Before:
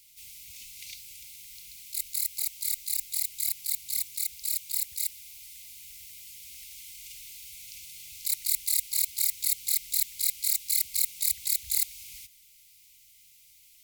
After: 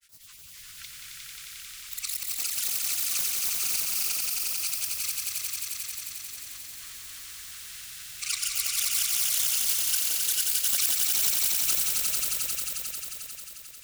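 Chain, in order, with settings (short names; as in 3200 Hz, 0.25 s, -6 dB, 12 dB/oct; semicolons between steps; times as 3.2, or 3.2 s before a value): grains, pitch spread up and down by 12 st; swelling echo 89 ms, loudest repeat 5, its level -4 dB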